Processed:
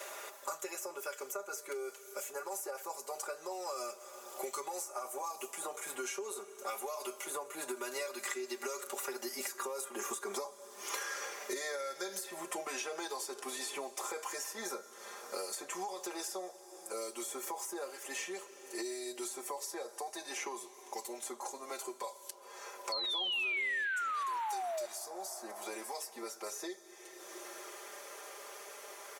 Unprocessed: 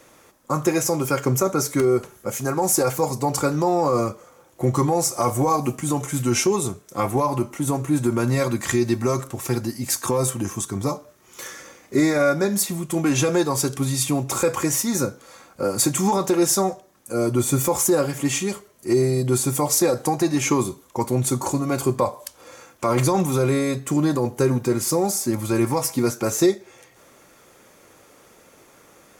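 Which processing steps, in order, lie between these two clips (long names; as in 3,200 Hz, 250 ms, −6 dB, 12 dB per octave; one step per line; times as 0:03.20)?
source passing by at 0:10.36, 15 m/s, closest 1.3 metres
high-pass filter 450 Hz 24 dB per octave
comb filter 5 ms, depth 97%
downward compressor 6 to 1, threshold −53 dBFS, peak gain reduction 28 dB
sound drawn into the spectrogram fall, 0:22.92–0:24.86, 580–4,400 Hz −50 dBFS
dense smooth reverb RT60 3.1 s, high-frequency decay 0.85×, pre-delay 110 ms, DRR 19.5 dB
multiband upward and downward compressor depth 100%
level +17.5 dB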